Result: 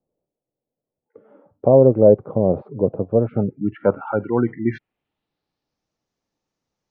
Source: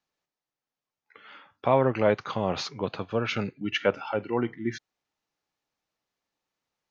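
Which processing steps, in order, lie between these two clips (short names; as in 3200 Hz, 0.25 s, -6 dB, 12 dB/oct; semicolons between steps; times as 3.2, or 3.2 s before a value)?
spectral gate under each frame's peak -25 dB strong; tilt shelf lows +7.5 dB, about 700 Hz; low-pass sweep 550 Hz -> 6100 Hz, 3.03–5.89; 1.69–4.07 air absorption 260 m; gain +3.5 dB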